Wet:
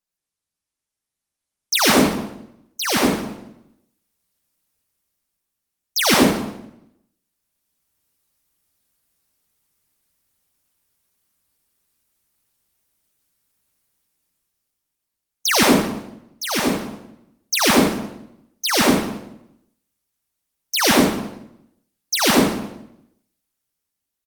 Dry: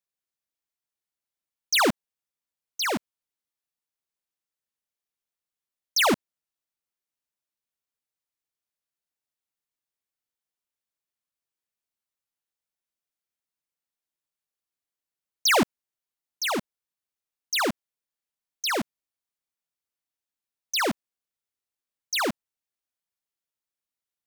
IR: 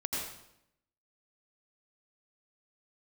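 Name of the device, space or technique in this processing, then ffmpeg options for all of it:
speakerphone in a meeting room: -filter_complex "[0:a]asplit=3[a][b][c];[a]afade=t=out:st=1.77:d=0.02[d];[b]bandreject=f=60:t=h:w=6,bandreject=f=120:t=h:w=6,bandreject=f=180:t=h:w=6,bandreject=f=240:t=h:w=6,bandreject=f=300:t=h:w=6,bandreject=f=360:t=h:w=6,bandreject=f=420:t=h:w=6,bandreject=f=480:t=h:w=6,afade=t=in:st=1.77:d=0.02,afade=t=out:st=2.82:d=0.02[e];[c]afade=t=in:st=2.82:d=0.02[f];[d][e][f]amix=inputs=3:normalize=0,bass=f=250:g=8,treble=f=4k:g=5,asplit=2[g][h];[h]adelay=44,volume=-13dB[i];[g][i]amix=inputs=2:normalize=0,asplit=2[j][k];[k]adelay=184,lowpass=f=1.3k:p=1,volume=-17.5dB,asplit=2[l][m];[m]adelay=184,lowpass=f=1.3k:p=1,volume=0.2[n];[j][l][n]amix=inputs=3:normalize=0[o];[1:a]atrim=start_sample=2205[p];[o][p]afir=irnorm=-1:irlink=0,dynaudnorm=f=260:g=9:m=14dB,volume=-1dB" -ar 48000 -c:a libopus -b:a 24k

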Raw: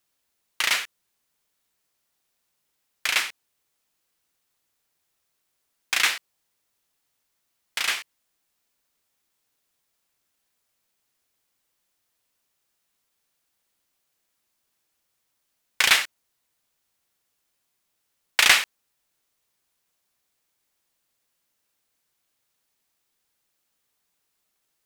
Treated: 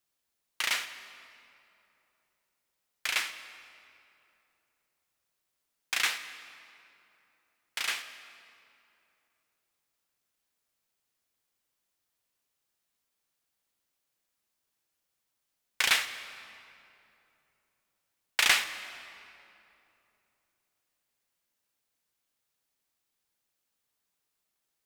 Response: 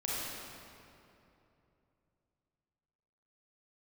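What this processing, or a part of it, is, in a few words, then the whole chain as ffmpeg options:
saturated reverb return: -filter_complex "[0:a]asplit=2[a][b];[1:a]atrim=start_sample=2205[c];[b][c]afir=irnorm=-1:irlink=0,asoftclip=type=tanh:threshold=-10.5dB,volume=-13.5dB[d];[a][d]amix=inputs=2:normalize=0,volume=-8dB"

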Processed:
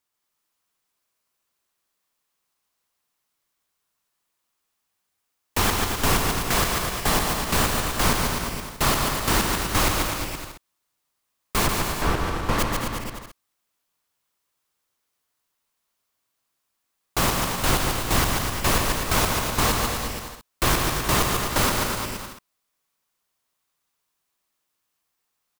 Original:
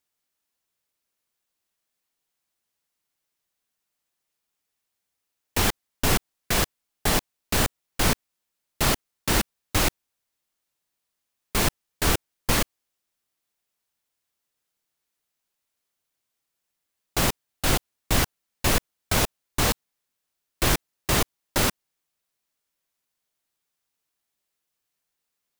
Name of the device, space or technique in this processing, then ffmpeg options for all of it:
ducked delay: -filter_complex "[0:a]asplit=3[a][b][c];[a]afade=t=out:st=11.66:d=0.02[d];[b]lowpass=f=1.7k:p=1,afade=t=in:st=11.66:d=0.02,afade=t=out:st=12.58:d=0.02[e];[c]afade=t=in:st=12.58:d=0.02[f];[d][e][f]amix=inputs=3:normalize=0,equalizer=f=1.1k:w=2.5:g=6,aecho=1:1:140|252|341.6|413.3|470.6:0.631|0.398|0.251|0.158|0.1,asplit=3[g][h][i];[h]adelay=219,volume=-4dB[j];[i]apad=whole_len=1159133[k];[j][k]sidechaincompress=threshold=-27dB:ratio=8:attack=16:release=390[l];[g][l]amix=inputs=2:normalize=0"

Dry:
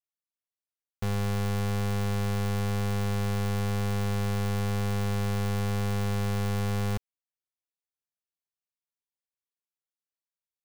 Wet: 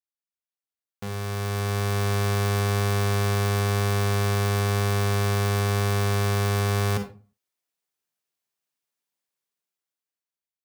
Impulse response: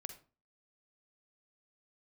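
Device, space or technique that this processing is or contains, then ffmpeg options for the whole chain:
far laptop microphone: -filter_complex "[1:a]atrim=start_sample=2205[a];[0:a][a]afir=irnorm=-1:irlink=0,highpass=130,dynaudnorm=f=420:g=7:m=14.5dB,volume=-1.5dB"

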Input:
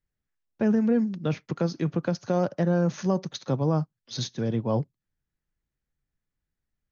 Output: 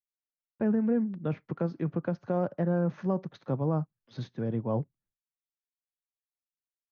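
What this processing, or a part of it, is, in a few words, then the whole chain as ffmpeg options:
hearing-loss simulation: -af "lowpass=1.8k,agate=range=-33dB:threshold=-58dB:ratio=3:detection=peak,volume=-4dB"

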